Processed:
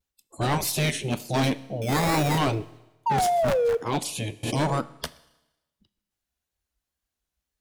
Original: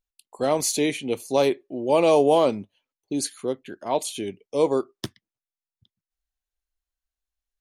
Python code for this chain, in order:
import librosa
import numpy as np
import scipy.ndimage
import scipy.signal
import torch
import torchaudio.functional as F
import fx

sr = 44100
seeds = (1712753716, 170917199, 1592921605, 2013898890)

y = fx.cycle_switch(x, sr, every=3, mode='inverted', at=(3.18, 3.81))
y = fx.spec_gate(y, sr, threshold_db=-10, keep='weak')
y = fx.low_shelf(y, sr, hz=320.0, db=10.5)
y = fx.sample_hold(y, sr, seeds[0], rate_hz=3000.0, jitter_pct=0, at=(1.82, 2.38))
y = fx.spec_paint(y, sr, seeds[1], shape='fall', start_s=3.06, length_s=0.71, low_hz=430.0, high_hz=920.0, level_db=-27.0)
y = fx.wow_flutter(y, sr, seeds[2], rate_hz=2.1, depth_cents=96.0)
y = np.clip(y, -10.0 ** (-25.0 / 20.0), 10.0 ** (-25.0 / 20.0))
y = fx.rev_schroeder(y, sr, rt60_s=1.0, comb_ms=26, drr_db=17.5)
y = fx.pre_swell(y, sr, db_per_s=40.0, at=(4.43, 4.9))
y = F.gain(torch.from_numpy(y), 5.5).numpy()